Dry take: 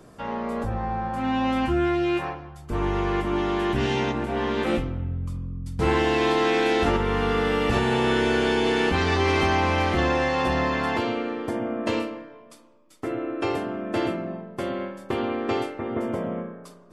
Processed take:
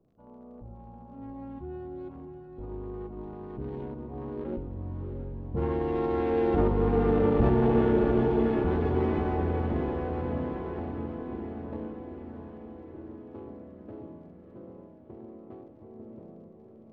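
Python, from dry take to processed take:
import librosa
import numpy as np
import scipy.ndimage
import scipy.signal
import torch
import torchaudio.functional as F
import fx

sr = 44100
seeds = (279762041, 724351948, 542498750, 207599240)

y = fx.wiener(x, sr, points=25)
y = fx.doppler_pass(y, sr, speed_mps=15, closest_m=13.0, pass_at_s=7.31)
y = fx.tilt_shelf(y, sr, db=5.0, hz=1200.0)
y = fx.dmg_crackle(y, sr, seeds[0], per_s=37.0, level_db=-49.0)
y = fx.spacing_loss(y, sr, db_at_10k=29)
y = fx.echo_diffused(y, sr, ms=671, feedback_pct=60, wet_db=-7)
y = F.gain(torch.from_numpy(y), -2.5).numpy()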